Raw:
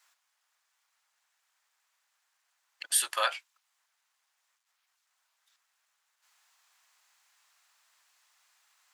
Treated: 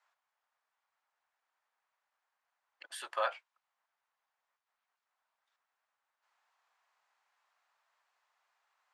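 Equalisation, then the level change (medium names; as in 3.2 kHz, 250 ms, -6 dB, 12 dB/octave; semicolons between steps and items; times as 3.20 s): band-pass filter 580 Hz, Q 0.79; 0.0 dB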